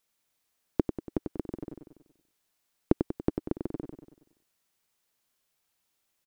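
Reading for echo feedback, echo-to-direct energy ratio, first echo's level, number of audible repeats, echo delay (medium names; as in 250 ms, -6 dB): 52%, -5.5 dB, -7.0 dB, 5, 95 ms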